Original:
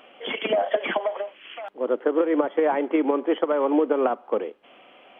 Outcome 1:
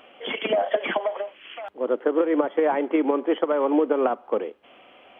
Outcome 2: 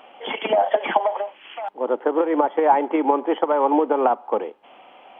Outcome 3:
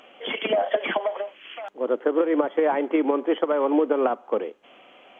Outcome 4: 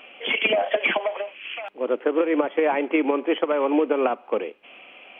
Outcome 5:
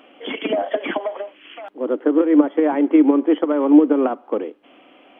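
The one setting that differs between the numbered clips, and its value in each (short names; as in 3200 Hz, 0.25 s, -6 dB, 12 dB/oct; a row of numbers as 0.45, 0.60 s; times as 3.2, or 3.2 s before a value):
bell, frequency: 81, 860, 6600, 2500, 290 Hz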